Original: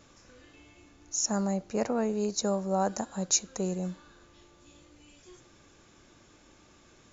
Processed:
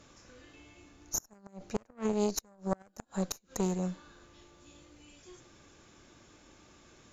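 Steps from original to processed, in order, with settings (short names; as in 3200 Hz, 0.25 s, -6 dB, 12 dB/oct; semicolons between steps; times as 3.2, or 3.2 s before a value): added harmonics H 3 -30 dB, 4 -9 dB, 6 -28 dB, 7 -36 dB, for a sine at -12 dBFS; flipped gate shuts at -17 dBFS, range -33 dB; gain +2 dB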